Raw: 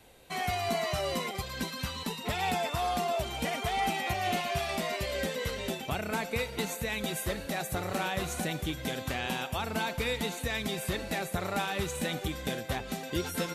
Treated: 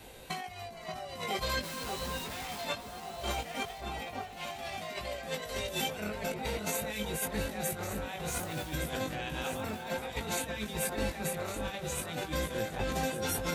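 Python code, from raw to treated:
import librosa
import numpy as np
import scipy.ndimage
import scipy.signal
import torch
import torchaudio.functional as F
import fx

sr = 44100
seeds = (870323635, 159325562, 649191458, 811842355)

y = fx.clip_1bit(x, sr, at=(1.62, 2.65))
y = fx.high_shelf(y, sr, hz=4200.0, db=10.0, at=(5.42, 6.0))
y = fx.over_compress(y, sr, threshold_db=-38.0, ratio=-0.5)
y = fx.quant_dither(y, sr, seeds[0], bits=8, dither='none', at=(8.29, 8.73), fade=0.02)
y = fx.doubler(y, sr, ms=19.0, db=-5.5)
y = fx.echo_alternate(y, sr, ms=582, hz=1500.0, feedback_pct=54, wet_db=-4.0)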